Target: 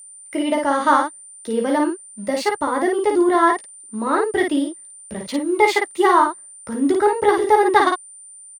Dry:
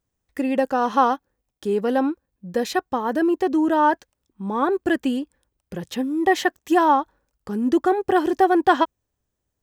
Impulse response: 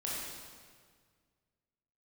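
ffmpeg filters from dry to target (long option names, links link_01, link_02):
-filter_complex "[0:a]acrossover=split=120[link_01][link_02];[link_01]aeval=exprs='val(0)*gte(abs(val(0)),0.00188)':channel_layout=same[link_03];[link_03][link_02]amix=inputs=2:normalize=0,adynamicsmooth=sensitivity=3:basefreq=6400,highshelf=frequency=4100:width_type=q:width=1.5:gain=-10.5,asplit=2[link_04][link_05];[link_05]aecho=0:1:16|60:0.531|0.668[link_06];[link_04][link_06]amix=inputs=2:normalize=0,aexciter=amount=5.5:drive=3.6:freq=4300,asetrate=49392,aresample=44100,aeval=exprs='val(0)+0.0112*sin(2*PI*9100*n/s)':channel_layout=same"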